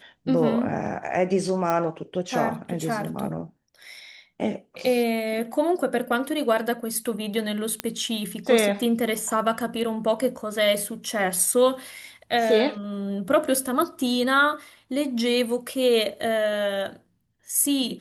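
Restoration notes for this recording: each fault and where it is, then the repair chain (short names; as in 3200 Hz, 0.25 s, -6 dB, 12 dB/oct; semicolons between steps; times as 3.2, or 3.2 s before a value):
1.7 pop -12 dBFS
7.8 pop -9 dBFS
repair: de-click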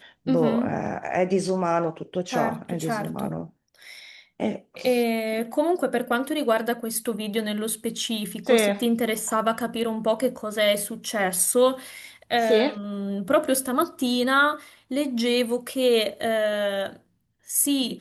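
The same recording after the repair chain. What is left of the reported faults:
none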